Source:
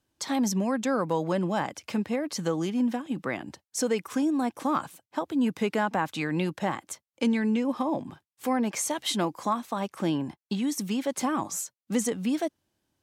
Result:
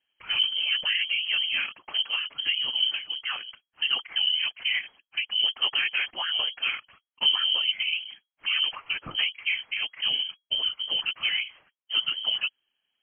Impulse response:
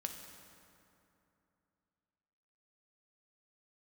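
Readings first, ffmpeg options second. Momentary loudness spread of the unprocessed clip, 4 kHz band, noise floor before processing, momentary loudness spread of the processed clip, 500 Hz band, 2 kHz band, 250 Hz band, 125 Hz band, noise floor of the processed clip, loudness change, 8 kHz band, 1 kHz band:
7 LU, +18.0 dB, under -85 dBFS, 7 LU, -22.0 dB, +9.0 dB, under -30 dB, under -20 dB, under -85 dBFS, +3.5 dB, under -35 dB, -11.5 dB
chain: -af "afftfilt=real='hypot(re,im)*cos(2*PI*random(0))':imag='hypot(re,im)*sin(2*PI*random(1))':win_size=512:overlap=0.75,lowpass=f=2.8k:t=q:w=0.5098,lowpass=f=2.8k:t=q:w=0.6013,lowpass=f=2.8k:t=q:w=0.9,lowpass=f=2.8k:t=q:w=2.563,afreqshift=-3300,acontrast=54"

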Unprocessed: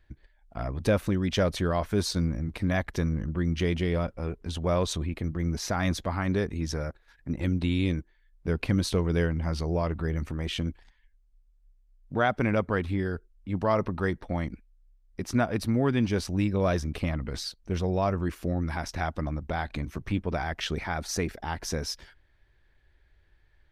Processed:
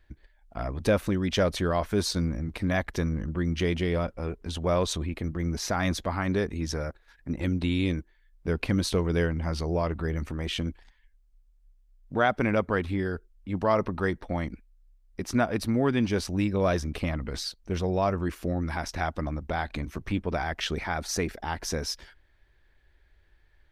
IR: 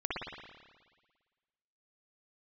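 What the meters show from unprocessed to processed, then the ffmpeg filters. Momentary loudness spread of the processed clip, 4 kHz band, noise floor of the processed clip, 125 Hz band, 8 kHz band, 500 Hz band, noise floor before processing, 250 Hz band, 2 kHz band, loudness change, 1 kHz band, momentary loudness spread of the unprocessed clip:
9 LU, +1.5 dB, -62 dBFS, -1.5 dB, +1.5 dB, +1.5 dB, -64 dBFS, 0.0 dB, +1.5 dB, +0.5 dB, +1.5 dB, 9 LU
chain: -af "equalizer=f=120:w=1.1:g=-4,volume=1.5dB"

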